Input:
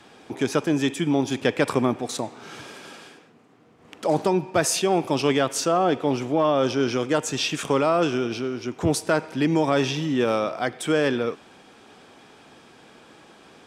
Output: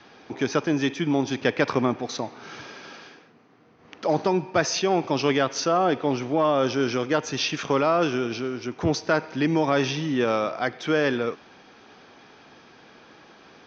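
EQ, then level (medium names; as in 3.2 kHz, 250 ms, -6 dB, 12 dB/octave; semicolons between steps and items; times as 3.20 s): rippled Chebyshev low-pass 6.3 kHz, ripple 3 dB; +1.5 dB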